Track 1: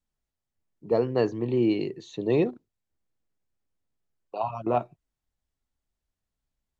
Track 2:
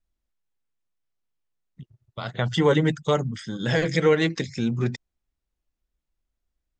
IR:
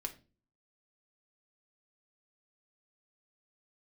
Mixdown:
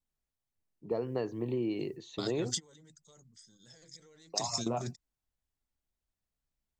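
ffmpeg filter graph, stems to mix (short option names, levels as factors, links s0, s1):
-filter_complex "[0:a]volume=0.596,asplit=2[s0][s1];[1:a]alimiter=limit=0.112:level=0:latency=1:release=16,aexciter=amount=10.1:drive=7:freq=4200,volume=0.376[s2];[s1]apad=whole_len=299515[s3];[s2][s3]sidechaingate=range=0.0562:threshold=0.00891:ratio=16:detection=peak[s4];[s0][s4]amix=inputs=2:normalize=0,acompressor=threshold=0.0355:ratio=6"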